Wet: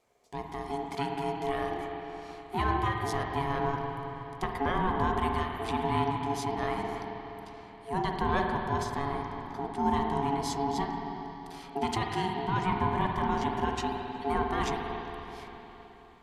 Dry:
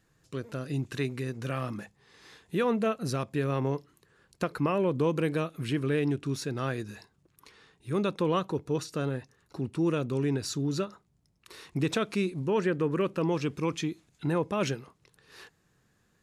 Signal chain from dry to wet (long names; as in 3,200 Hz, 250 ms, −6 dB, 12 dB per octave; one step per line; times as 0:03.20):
spring reverb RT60 3.7 s, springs 47/53 ms, chirp 65 ms, DRR 1.5 dB
ring modulation 560 Hz